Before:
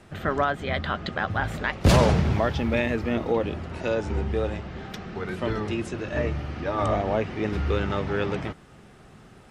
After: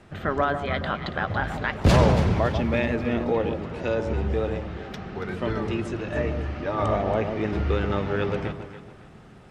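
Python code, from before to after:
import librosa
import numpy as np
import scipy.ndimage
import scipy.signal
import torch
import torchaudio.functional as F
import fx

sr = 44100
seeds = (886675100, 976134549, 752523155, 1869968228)

y = fx.high_shelf(x, sr, hz=6600.0, db=-8.5)
y = fx.echo_alternate(y, sr, ms=140, hz=1000.0, feedback_pct=58, wet_db=-6.5)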